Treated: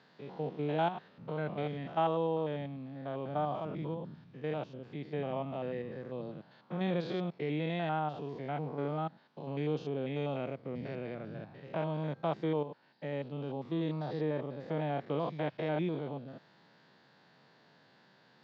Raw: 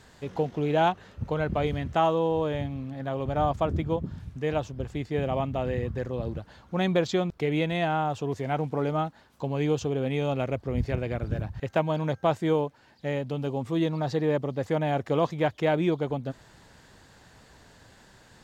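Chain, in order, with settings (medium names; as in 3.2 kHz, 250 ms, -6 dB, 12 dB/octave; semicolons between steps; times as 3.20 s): spectrogram pixelated in time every 100 ms; elliptic band-pass 150–4600 Hz, stop band 40 dB; trim -6 dB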